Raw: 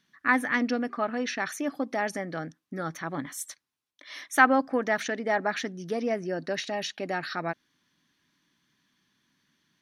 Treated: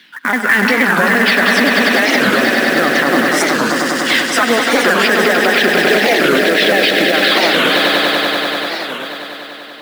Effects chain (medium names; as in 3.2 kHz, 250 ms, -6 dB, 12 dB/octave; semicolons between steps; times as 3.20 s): sawtooth pitch modulation -4 st, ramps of 164 ms; high-pass 260 Hz 24 dB/octave; tilt EQ -2.5 dB/octave; compression 6:1, threshold -31 dBFS, peak gain reduction 15 dB; high-order bell 2.8 kHz +13 dB; short-mantissa float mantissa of 2-bit; on a send: echo with a slow build-up 97 ms, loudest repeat 5, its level -7.5 dB; on the sum: loudness maximiser +21 dB; warped record 45 rpm, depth 250 cents; trim -1 dB